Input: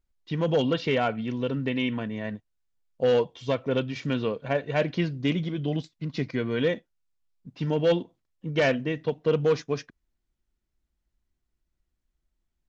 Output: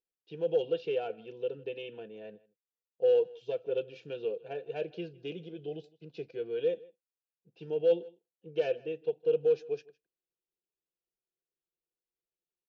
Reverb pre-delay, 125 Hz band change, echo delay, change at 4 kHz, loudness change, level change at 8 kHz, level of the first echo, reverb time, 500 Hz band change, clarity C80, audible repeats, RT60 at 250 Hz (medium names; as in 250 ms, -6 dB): no reverb, -20.0 dB, 159 ms, -13.0 dB, -5.5 dB, no reading, -23.0 dB, no reverb, -3.5 dB, no reverb, 1, no reverb